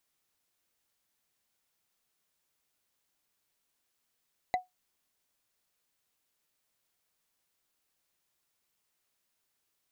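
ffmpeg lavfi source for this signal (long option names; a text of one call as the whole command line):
ffmpeg -f lavfi -i "aevalsrc='0.0891*pow(10,-3*t/0.16)*sin(2*PI*734*t)+0.0398*pow(10,-3*t/0.047)*sin(2*PI*2023.6*t)+0.0178*pow(10,-3*t/0.021)*sin(2*PI*3966.5*t)+0.00794*pow(10,-3*t/0.012)*sin(2*PI*6556.8*t)+0.00355*pow(10,-3*t/0.007)*sin(2*PI*9791.6*t)':duration=0.45:sample_rate=44100" out.wav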